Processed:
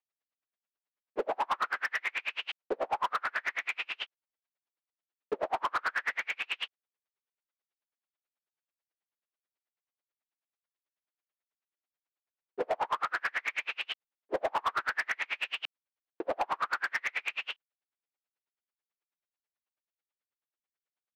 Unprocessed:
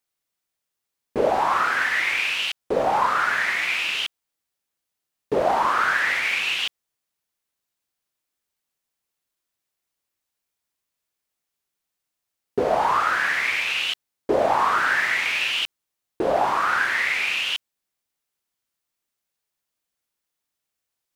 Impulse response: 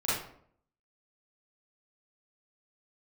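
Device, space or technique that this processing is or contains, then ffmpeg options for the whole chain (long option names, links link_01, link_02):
helicopter radio: -af "highpass=360,lowpass=2700,aeval=exprs='val(0)*pow(10,-40*(0.5-0.5*cos(2*PI*9.2*n/s))/20)':channel_layout=same,asoftclip=type=hard:threshold=-21dB,volume=-2.5dB"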